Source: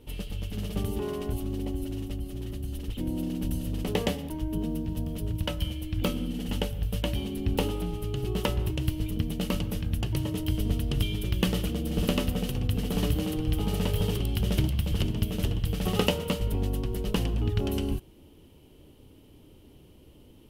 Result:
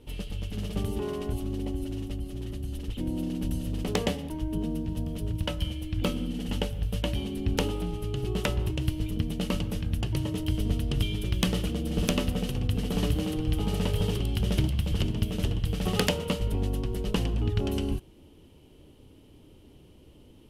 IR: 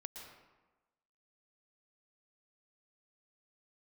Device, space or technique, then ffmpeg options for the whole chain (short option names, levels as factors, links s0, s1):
overflowing digital effects unit: -af "aeval=exprs='(mod(3.76*val(0)+1,2)-1)/3.76':c=same,lowpass=11000"